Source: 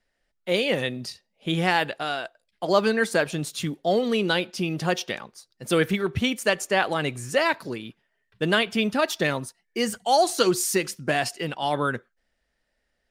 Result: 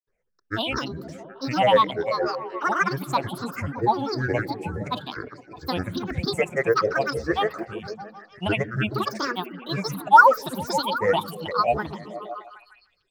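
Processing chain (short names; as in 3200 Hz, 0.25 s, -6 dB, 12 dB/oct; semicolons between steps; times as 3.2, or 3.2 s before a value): EQ curve 280 Hz 0 dB, 400 Hz -17 dB, 790 Hz +12 dB, 1600 Hz -19 dB, 2800 Hz +6 dB, 4800 Hz -30 dB, 8200 Hz -4 dB; grains, spray 0.1 s, pitch spread up and down by 12 st; delay with a stepping band-pass 0.154 s, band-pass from 170 Hz, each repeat 0.7 oct, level -4 dB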